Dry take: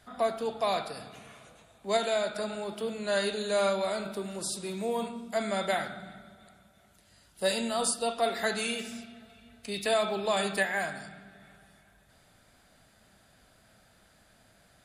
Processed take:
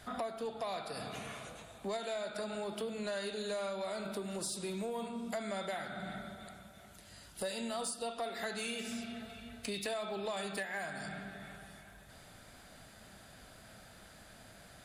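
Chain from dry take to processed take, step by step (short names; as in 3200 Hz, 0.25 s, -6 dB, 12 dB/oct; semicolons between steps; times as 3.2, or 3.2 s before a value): compressor 6:1, threshold -42 dBFS, peak gain reduction 18.5 dB; soft clip -34.5 dBFS, distortion -22 dB; gain +6 dB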